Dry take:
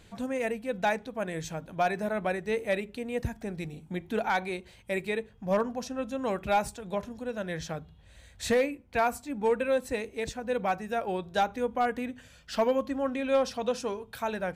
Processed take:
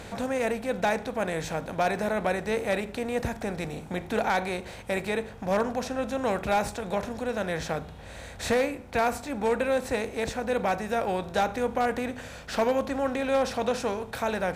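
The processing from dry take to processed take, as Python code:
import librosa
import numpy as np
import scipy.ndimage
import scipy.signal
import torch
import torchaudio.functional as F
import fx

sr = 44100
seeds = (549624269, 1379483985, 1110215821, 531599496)

y = fx.bin_compress(x, sr, power=0.6)
y = y * 10.0 ** (-1.5 / 20.0)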